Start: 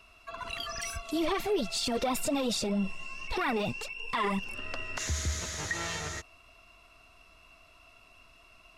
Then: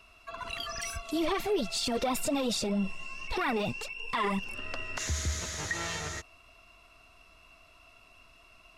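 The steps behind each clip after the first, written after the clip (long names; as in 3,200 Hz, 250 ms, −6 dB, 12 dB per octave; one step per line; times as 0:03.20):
no processing that can be heard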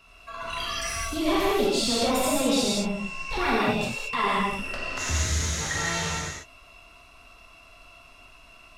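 reverb whose tail is shaped and stops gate 250 ms flat, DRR −6 dB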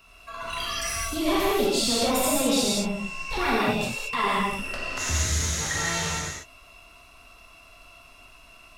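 high-shelf EQ 10,000 Hz +9 dB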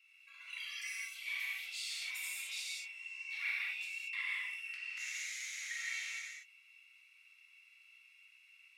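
four-pole ladder high-pass 2,100 Hz, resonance 80%
level −6 dB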